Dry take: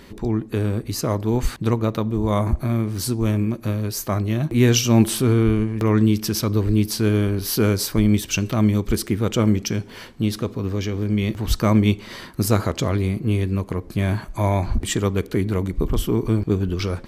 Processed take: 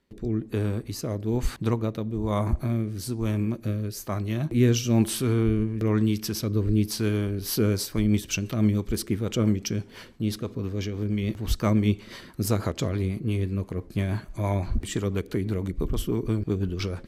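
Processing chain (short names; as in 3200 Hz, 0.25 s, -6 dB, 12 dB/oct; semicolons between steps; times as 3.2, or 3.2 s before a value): rotary speaker horn 1.1 Hz, later 6 Hz, at 7.09; gate with hold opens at -36 dBFS; gain -4 dB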